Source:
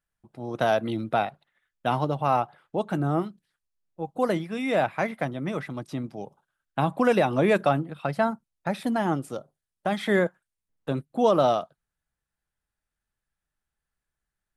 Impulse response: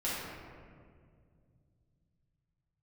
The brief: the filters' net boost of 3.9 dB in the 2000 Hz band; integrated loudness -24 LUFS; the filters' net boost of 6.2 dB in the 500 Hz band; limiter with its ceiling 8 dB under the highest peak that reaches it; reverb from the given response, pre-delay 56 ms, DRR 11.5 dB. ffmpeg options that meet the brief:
-filter_complex "[0:a]equalizer=f=500:t=o:g=7.5,equalizer=f=2k:t=o:g=4.5,alimiter=limit=-12dB:level=0:latency=1,asplit=2[a][b];[1:a]atrim=start_sample=2205,adelay=56[c];[b][c]afir=irnorm=-1:irlink=0,volume=-18dB[d];[a][d]amix=inputs=2:normalize=0,volume=0.5dB"

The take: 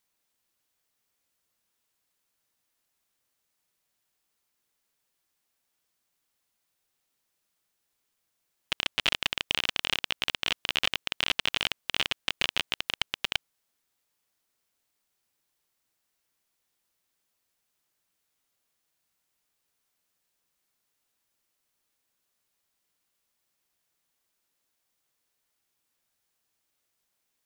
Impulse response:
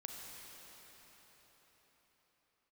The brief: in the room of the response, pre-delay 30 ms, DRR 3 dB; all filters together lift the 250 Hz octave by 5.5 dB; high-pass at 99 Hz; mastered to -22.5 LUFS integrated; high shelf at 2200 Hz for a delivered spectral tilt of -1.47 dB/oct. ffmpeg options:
-filter_complex "[0:a]highpass=99,equalizer=f=250:t=o:g=7,highshelf=f=2.2k:g=8.5,asplit=2[a][b];[1:a]atrim=start_sample=2205,adelay=30[c];[b][c]afir=irnorm=-1:irlink=0,volume=-0.5dB[d];[a][d]amix=inputs=2:normalize=0"

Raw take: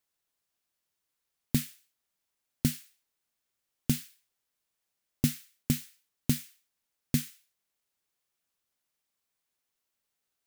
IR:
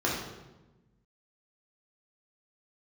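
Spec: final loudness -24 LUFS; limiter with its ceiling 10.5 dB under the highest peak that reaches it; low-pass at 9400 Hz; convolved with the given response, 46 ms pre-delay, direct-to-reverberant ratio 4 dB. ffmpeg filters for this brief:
-filter_complex "[0:a]lowpass=9.4k,alimiter=limit=-21.5dB:level=0:latency=1,asplit=2[a][b];[1:a]atrim=start_sample=2205,adelay=46[c];[b][c]afir=irnorm=-1:irlink=0,volume=-15dB[d];[a][d]amix=inputs=2:normalize=0,volume=15.5dB"

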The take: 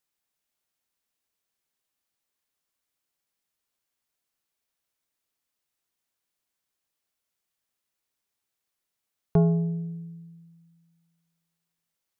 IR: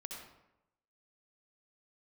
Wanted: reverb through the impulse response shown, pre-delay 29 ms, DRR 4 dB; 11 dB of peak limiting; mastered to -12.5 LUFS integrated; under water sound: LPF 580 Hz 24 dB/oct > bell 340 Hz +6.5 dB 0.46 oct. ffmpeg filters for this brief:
-filter_complex "[0:a]alimiter=limit=-21dB:level=0:latency=1,asplit=2[a][b];[1:a]atrim=start_sample=2205,adelay=29[c];[b][c]afir=irnorm=-1:irlink=0,volume=-1.5dB[d];[a][d]amix=inputs=2:normalize=0,lowpass=f=580:w=0.5412,lowpass=f=580:w=1.3066,equalizer=f=340:t=o:w=0.46:g=6.5,volume=18dB"

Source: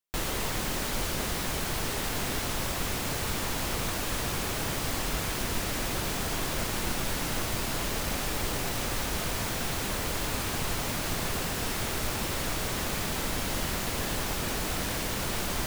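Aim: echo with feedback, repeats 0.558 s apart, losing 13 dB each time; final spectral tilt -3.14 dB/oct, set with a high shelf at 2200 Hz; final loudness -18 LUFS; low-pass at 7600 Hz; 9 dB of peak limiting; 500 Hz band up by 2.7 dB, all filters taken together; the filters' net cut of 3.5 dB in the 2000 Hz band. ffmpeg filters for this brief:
-af "lowpass=7.6k,equalizer=f=500:t=o:g=3.5,equalizer=f=2k:t=o:g=-7,highshelf=f=2.2k:g=4,alimiter=level_in=1.5dB:limit=-24dB:level=0:latency=1,volume=-1.5dB,aecho=1:1:558|1116|1674:0.224|0.0493|0.0108,volume=16.5dB"

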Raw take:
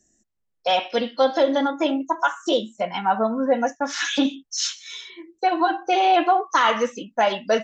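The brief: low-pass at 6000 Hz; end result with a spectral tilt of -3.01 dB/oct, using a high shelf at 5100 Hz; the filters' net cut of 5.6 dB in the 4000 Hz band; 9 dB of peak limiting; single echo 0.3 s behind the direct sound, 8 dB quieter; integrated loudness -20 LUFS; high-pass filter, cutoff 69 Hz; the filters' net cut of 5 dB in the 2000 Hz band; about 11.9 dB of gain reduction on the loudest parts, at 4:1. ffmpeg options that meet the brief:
-af "highpass=69,lowpass=6k,equalizer=f=2k:t=o:g=-6,equalizer=f=4k:t=o:g=-6.5,highshelf=f=5.1k:g=4.5,acompressor=threshold=-29dB:ratio=4,alimiter=level_in=2dB:limit=-24dB:level=0:latency=1,volume=-2dB,aecho=1:1:300:0.398,volume=15dB"

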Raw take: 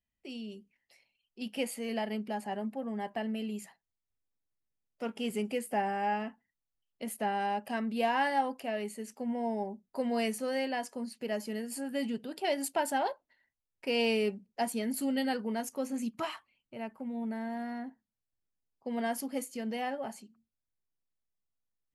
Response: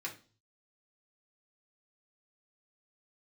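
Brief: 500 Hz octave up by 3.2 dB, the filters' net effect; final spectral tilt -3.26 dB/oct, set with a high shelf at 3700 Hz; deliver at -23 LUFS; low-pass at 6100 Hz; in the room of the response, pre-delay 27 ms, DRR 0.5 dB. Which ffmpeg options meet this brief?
-filter_complex "[0:a]lowpass=6.1k,equalizer=f=500:t=o:g=4,highshelf=f=3.7k:g=-7,asplit=2[a][b];[1:a]atrim=start_sample=2205,adelay=27[c];[b][c]afir=irnorm=-1:irlink=0,volume=-1.5dB[d];[a][d]amix=inputs=2:normalize=0,volume=8.5dB"

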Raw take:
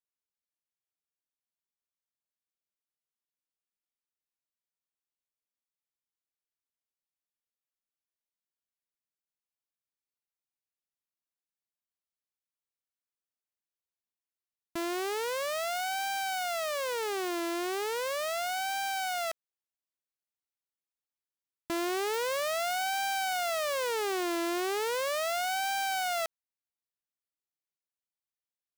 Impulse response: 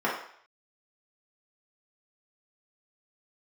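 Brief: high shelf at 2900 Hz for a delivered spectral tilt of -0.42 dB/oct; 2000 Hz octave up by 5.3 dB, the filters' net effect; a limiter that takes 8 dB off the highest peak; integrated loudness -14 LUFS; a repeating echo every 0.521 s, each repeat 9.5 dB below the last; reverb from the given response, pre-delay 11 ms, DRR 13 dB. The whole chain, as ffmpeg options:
-filter_complex "[0:a]equalizer=f=2k:t=o:g=4.5,highshelf=f=2.9k:g=6.5,alimiter=level_in=1dB:limit=-24dB:level=0:latency=1,volume=-1dB,aecho=1:1:521|1042|1563|2084:0.335|0.111|0.0365|0.012,asplit=2[a][b];[1:a]atrim=start_sample=2205,adelay=11[c];[b][c]afir=irnorm=-1:irlink=0,volume=-26dB[d];[a][d]amix=inputs=2:normalize=0,volume=20.5dB"

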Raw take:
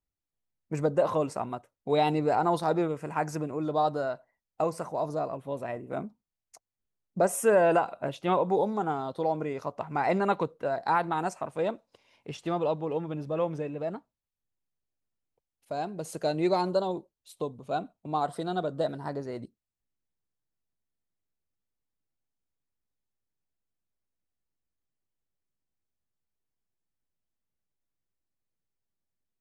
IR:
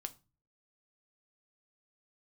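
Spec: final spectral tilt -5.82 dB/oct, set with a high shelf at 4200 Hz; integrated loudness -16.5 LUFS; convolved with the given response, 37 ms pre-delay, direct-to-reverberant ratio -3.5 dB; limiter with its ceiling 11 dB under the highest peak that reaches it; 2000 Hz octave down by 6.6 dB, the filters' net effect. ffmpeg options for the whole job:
-filter_complex "[0:a]equalizer=f=2k:t=o:g=-8,highshelf=f=4.2k:g=-9,alimiter=limit=-24dB:level=0:latency=1,asplit=2[a][b];[1:a]atrim=start_sample=2205,adelay=37[c];[b][c]afir=irnorm=-1:irlink=0,volume=6.5dB[d];[a][d]amix=inputs=2:normalize=0,volume=12.5dB"

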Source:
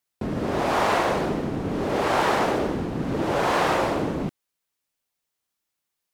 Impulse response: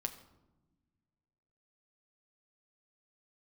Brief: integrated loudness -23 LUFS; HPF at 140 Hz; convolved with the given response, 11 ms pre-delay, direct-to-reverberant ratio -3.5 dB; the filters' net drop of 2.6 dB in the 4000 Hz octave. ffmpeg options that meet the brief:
-filter_complex "[0:a]highpass=140,equalizer=f=4k:t=o:g=-3.5,asplit=2[a][b];[1:a]atrim=start_sample=2205,adelay=11[c];[b][c]afir=irnorm=-1:irlink=0,volume=4dB[d];[a][d]amix=inputs=2:normalize=0,volume=-4dB"

